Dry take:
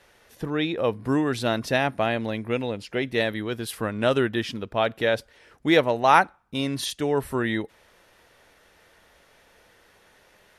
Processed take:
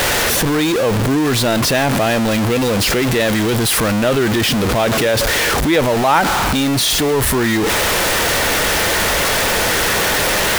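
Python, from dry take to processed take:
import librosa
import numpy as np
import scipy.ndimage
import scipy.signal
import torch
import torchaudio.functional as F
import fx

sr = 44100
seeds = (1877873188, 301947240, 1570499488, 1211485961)

p1 = x + 0.5 * 10.0 ** (-17.5 / 20.0) * np.sign(x)
p2 = fx.over_compress(p1, sr, threshold_db=-23.0, ratio=-1.0)
y = p1 + F.gain(torch.from_numpy(p2), 0.0).numpy()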